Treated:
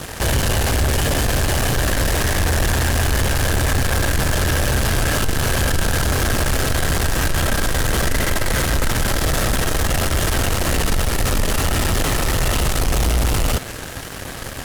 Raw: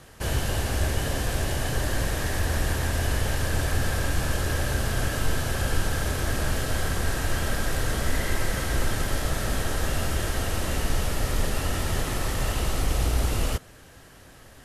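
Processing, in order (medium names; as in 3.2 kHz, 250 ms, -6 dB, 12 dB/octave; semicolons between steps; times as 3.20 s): in parallel at -7 dB: fuzz box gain 45 dB, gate -50 dBFS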